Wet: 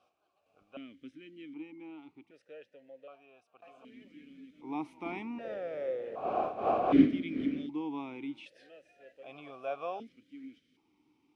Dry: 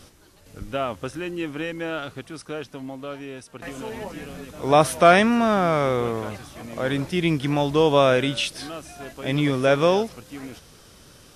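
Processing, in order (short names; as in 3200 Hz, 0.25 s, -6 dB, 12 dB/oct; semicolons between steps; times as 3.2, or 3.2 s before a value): 5.04–7.66 wind noise 490 Hz -15 dBFS; vowel sequencer 1.3 Hz; gain -8 dB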